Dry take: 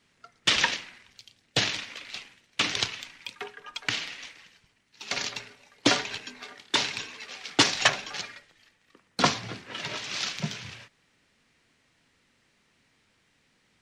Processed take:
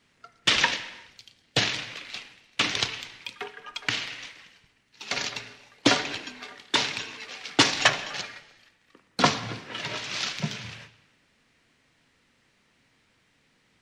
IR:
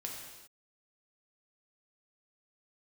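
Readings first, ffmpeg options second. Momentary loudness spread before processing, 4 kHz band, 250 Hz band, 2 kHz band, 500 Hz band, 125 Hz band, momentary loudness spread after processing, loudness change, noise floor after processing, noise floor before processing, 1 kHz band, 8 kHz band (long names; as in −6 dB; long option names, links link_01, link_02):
18 LU, +1.0 dB, +2.0 dB, +2.0 dB, +2.0 dB, +2.5 dB, 18 LU, +1.5 dB, −67 dBFS, −69 dBFS, +2.0 dB, 0.0 dB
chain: -filter_complex "[0:a]asplit=2[link_01][link_02];[1:a]atrim=start_sample=2205,lowpass=5200[link_03];[link_02][link_03]afir=irnorm=-1:irlink=0,volume=-8.5dB[link_04];[link_01][link_04]amix=inputs=2:normalize=0"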